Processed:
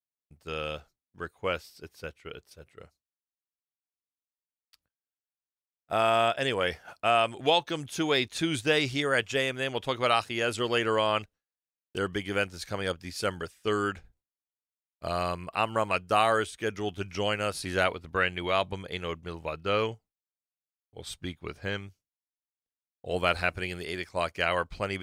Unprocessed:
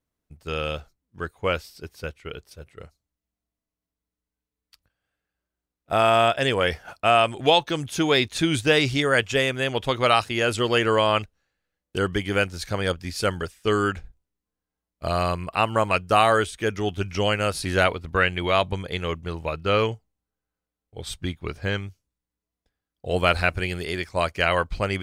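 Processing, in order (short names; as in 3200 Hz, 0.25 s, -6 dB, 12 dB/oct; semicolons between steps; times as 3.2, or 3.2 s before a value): gate with hold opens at -51 dBFS; low shelf 88 Hz -10 dB; gain -5.5 dB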